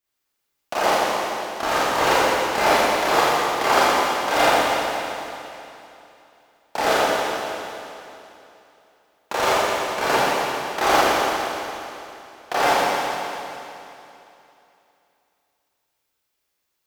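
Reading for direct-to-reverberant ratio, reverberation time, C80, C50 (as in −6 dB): −10.0 dB, 2.9 s, −3.0 dB, −3.5 dB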